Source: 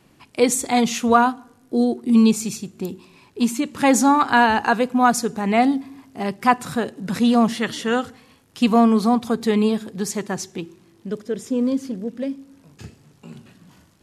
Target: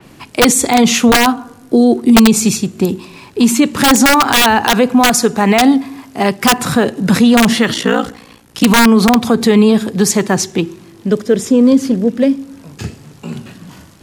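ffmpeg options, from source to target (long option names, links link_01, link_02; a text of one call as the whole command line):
ffmpeg -i in.wav -filter_complex "[0:a]asettb=1/sr,asplit=3[link_01][link_02][link_03];[link_01]atrim=end=5.004[link_04];[link_02]atrim=start=5:end=6.44,asetpts=PTS-STARTPTS,afade=type=in:duration=0.004:curve=qsin,afade=type=out:start_time=1.436:duration=0.004:curve=qsin,lowshelf=frequency=360:gain=-5.5[link_05];[link_03]atrim=start=6.436[link_06];[link_04][link_05]acrossfade=duration=0.004:curve1=hsin:curve2=qsin[link_07];[link_07][link_06]acrossfade=duration=0.004:curve1=qsin:curve2=hsin,asettb=1/sr,asplit=3[link_08][link_09][link_10];[link_08]atrim=end=7.734[link_11];[link_09]atrim=start=7.73:end=8.64,asetpts=PTS-STARTPTS,afade=type=in:duration=0.004:curve=qsin,afade=type=out:start_time=0.906:duration=0.004:curve=qsin,aeval=exprs='val(0)*sin(2*PI*29*n/s)':channel_layout=same[link_12];[link_10]atrim=start=8.636[link_13];[link_11][link_12]acrossfade=duration=0.004:curve1=hsin:curve2=qsin[link_14];[link_14][link_13]acrossfade=duration=0.004:curve1=qsin:curve2=hsin,acrossover=split=230|1300|2100[link_15][link_16][link_17][link_18];[link_17]acrusher=bits=4:mode=log:mix=0:aa=0.000001[link_19];[link_15][link_16][link_19][link_18]amix=inputs=4:normalize=0,aeval=exprs='(mod(2.51*val(0)+1,2)-1)/2.51':channel_layout=same,alimiter=level_in=15.5dB:limit=-1dB:release=50:level=0:latency=1,adynamicequalizer=threshold=0.0631:dfrequency=4500:dqfactor=0.7:tfrequency=4500:tqfactor=0.7:attack=5:release=100:ratio=0.375:range=1.5:mode=cutabove:tftype=highshelf,volume=-1dB" out.wav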